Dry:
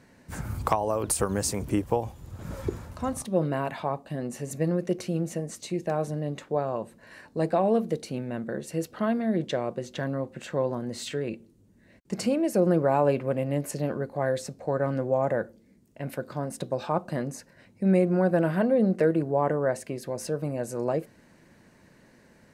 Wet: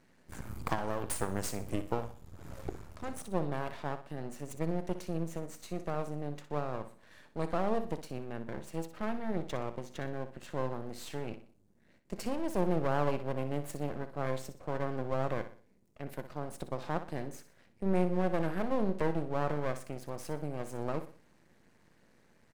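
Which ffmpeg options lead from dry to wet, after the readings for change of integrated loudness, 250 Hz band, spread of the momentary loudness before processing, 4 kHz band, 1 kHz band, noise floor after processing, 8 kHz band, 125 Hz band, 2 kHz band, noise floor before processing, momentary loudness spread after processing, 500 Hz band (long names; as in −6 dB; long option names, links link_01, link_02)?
−8.5 dB, −9.0 dB, 12 LU, −8.0 dB, −6.5 dB, −65 dBFS, −10.5 dB, −7.5 dB, −6.0 dB, −58 dBFS, 13 LU, −9.5 dB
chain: -af "aeval=exprs='max(val(0),0)':channel_layout=same,aecho=1:1:61|122|183|244:0.266|0.0984|0.0364|0.0135,volume=-5.5dB"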